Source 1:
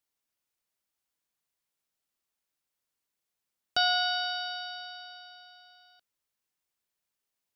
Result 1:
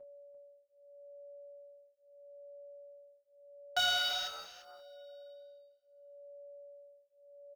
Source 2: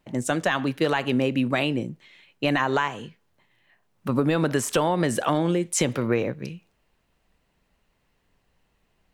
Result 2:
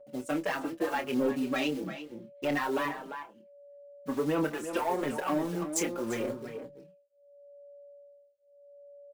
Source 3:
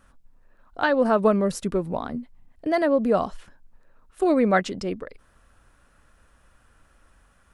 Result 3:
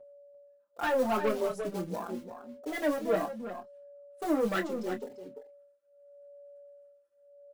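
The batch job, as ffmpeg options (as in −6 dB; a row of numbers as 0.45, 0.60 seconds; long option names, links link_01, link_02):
-filter_complex "[0:a]agate=range=-33dB:threshold=-48dB:ratio=3:detection=peak,highpass=240,afwtdn=0.0282,highshelf=frequency=4800:gain=5.5,acrusher=bits=4:mode=log:mix=0:aa=0.000001,aphaser=in_gain=1:out_gain=1:delay=3.7:decay=0.4:speed=1.6:type=sinusoidal,aeval=exprs='val(0)+0.00562*sin(2*PI*570*n/s)':channel_layout=same,asoftclip=type=tanh:threshold=-17dB,asplit=2[link_01][link_02];[link_02]adelay=27,volume=-8.5dB[link_03];[link_01][link_03]amix=inputs=2:normalize=0,asplit=2[link_04][link_05];[link_05]adelay=344,volume=-9dB,highshelf=frequency=4000:gain=-7.74[link_06];[link_04][link_06]amix=inputs=2:normalize=0,asplit=2[link_07][link_08];[link_08]adelay=5,afreqshift=0.78[link_09];[link_07][link_09]amix=inputs=2:normalize=1,volume=-3.5dB"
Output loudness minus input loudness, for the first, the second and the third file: −3.5, −8.0, −9.0 LU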